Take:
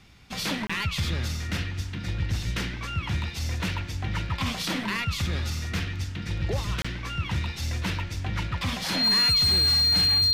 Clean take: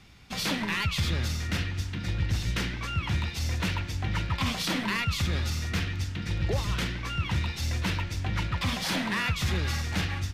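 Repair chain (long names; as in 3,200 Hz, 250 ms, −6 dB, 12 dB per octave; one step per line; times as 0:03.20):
clipped peaks rebuilt −17.5 dBFS
notch filter 4,200 Hz, Q 30
repair the gap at 0:00.67/0:06.82, 25 ms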